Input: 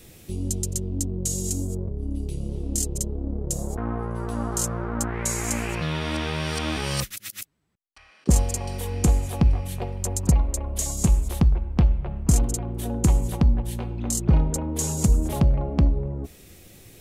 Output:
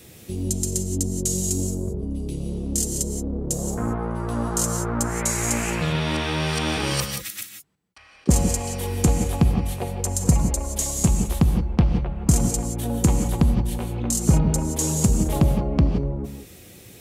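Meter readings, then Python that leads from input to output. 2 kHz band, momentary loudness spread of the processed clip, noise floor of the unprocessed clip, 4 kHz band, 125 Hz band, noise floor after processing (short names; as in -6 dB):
+3.5 dB, 8 LU, -52 dBFS, +3.5 dB, +1.5 dB, -47 dBFS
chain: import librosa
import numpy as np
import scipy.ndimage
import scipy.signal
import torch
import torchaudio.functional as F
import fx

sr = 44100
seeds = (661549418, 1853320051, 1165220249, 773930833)

y = scipy.signal.sosfilt(scipy.signal.butter(2, 69.0, 'highpass', fs=sr, output='sos'), x)
y = fx.rev_gated(y, sr, seeds[0], gate_ms=200, shape='rising', drr_db=6.0)
y = y * librosa.db_to_amplitude(2.5)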